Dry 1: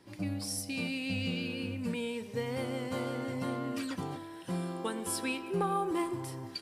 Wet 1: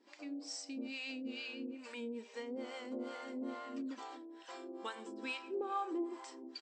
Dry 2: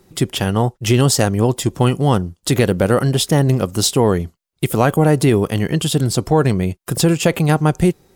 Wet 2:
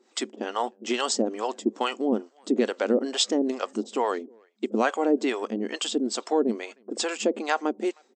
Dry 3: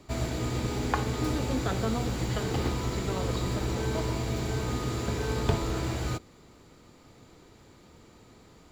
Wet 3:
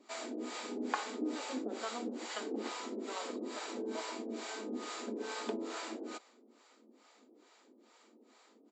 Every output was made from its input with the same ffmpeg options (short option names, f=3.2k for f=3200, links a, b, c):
-filter_complex "[0:a]asplit=2[a][b];[b]adelay=310,highpass=300,lowpass=3.4k,asoftclip=type=hard:threshold=-10.5dB,volume=-29dB[c];[a][c]amix=inputs=2:normalize=0,afftfilt=real='re*between(b*sr/4096,210,8200)':imag='im*between(b*sr/4096,210,8200)':win_size=4096:overlap=0.75,acrossover=split=560[d][e];[d]aeval=exprs='val(0)*(1-1/2+1/2*cos(2*PI*2.3*n/s))':c=same[f];[e]aeval=exprs='val(0)*(1-1/2-1/2*cos(2*PI*2.3*n/s))':c=same[g];[f][g]amix=inputs=2:normalize=0,volume=-2.5dB"